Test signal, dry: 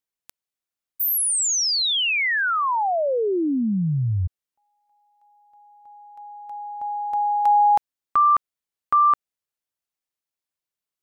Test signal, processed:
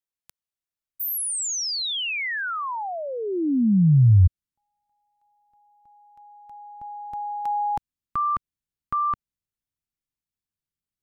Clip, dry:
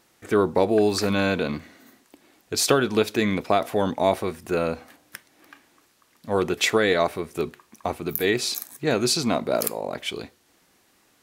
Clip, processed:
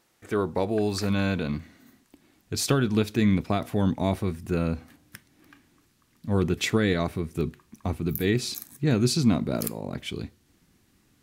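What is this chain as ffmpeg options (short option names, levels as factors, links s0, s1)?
-af "asubboost=boost=7:cutoff=220,volume=0.531"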